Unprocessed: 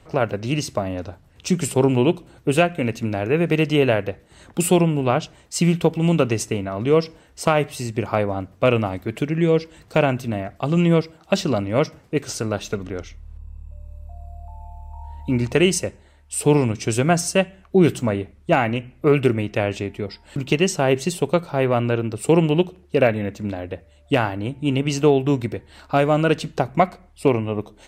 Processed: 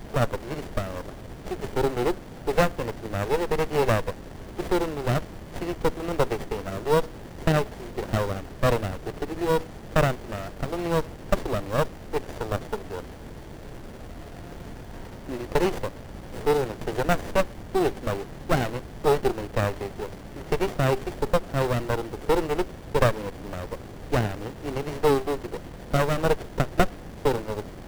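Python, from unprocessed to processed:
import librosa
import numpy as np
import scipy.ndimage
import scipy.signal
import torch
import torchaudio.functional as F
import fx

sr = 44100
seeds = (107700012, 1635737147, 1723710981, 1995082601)

p1 = scipy.signal.sosfilt(scipy.signal.butter(4, 390.0, 'highpass', fs=sr, output='sos'), x)
p2 = fx.high_shelf(p1, sr, hz=10000.0, db=-11.0)
p3 = fx.dmg_noise_colour(p2, sr, seeds[0], colour='pink', level_db=-37.0)
p4 = fx.sample_hold(p3, sr, seeds[1], rate_hz=4300.0, jitter_pct=0)
p5 = p3 + (p4 * librosa.db_to_amplitude(-4.5))
p6 = fx.running_max(p5, sr, window=33)
y = p6 * librosa.db_to_amplitude(-4.0)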